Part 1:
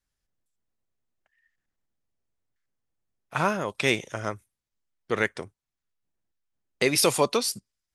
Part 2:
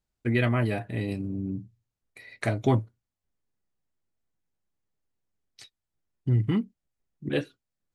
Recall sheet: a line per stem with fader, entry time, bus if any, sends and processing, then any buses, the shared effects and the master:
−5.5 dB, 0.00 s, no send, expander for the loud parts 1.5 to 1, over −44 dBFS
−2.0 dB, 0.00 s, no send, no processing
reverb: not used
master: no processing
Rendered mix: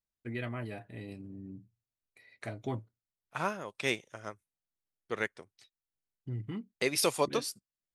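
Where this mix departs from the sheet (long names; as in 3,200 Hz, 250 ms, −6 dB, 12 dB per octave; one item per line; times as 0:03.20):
stem 2 −2.0 dB → −12.0 dB
master: extra low-shelf EQ 200 Hz −3.5 dB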